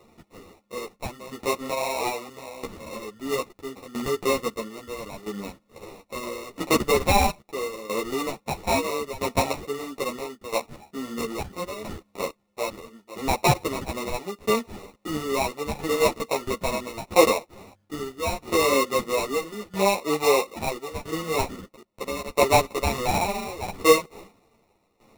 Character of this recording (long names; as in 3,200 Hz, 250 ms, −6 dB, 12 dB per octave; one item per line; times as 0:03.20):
aliases and images of a low sample rate 1,600 Hz, jitter 0%
tremolo saw down 0.76 Hz, depth 85%
a shimmering, thickened sound